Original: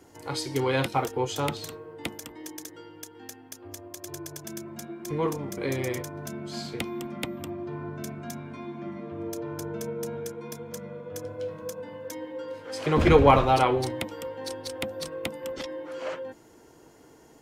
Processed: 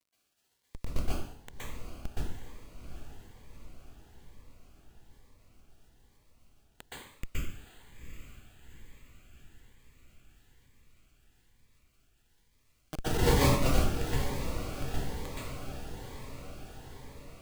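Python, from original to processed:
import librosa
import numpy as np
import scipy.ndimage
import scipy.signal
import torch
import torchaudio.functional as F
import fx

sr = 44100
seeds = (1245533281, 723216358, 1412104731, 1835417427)

p1 = fx.wiener(x, sr, points=25)
p2 = scipy.signal.sosfilt(scipy.signal.butter(4, 8100.0, 'lowpass', fs=sr, output='sos'), p1)
p3 = fx.over_compress(p2, sr, threshold_db=-39.0, ratio=-1.0)
p4 = p2 + (p3 * 10.0 ** (-1.5 / 20.0))
p5 = fx.schmitt(p4, sr, flips_db=-15.0)
p6 = fx.dmg_crackle(p5, sr, seeds[0], per_s=86.0, level_db=-60.0)
p7 = p6 + fx.echo_diffused(p6, sr, ms=782, feedback_pct=62, wet_db=-9.5, dry=0)
p8 = fx.rev_plate(p7, sr, seeds[1], rt60_s=0.69, hf_ratio=1.0, predelay_ms=110, drr_db=-10.0)
p9 = fx.notch_cascade(p8, sr, direction='rising', hz=1.1)
y = p9 * 10.0 ** (-2.0 / 20.0)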